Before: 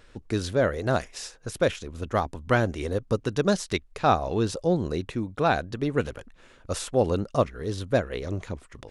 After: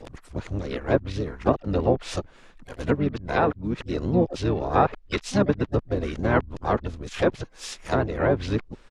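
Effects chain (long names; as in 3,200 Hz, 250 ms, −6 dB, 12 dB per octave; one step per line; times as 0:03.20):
played backwards from end to start
pitch-shifted copies added −12 semitones −9 dB, −7 semitones −6 dB, +5 semitones −12 dB
treble cut that deepens with the level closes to 2,100 Hz, closed at −17.5 dBFS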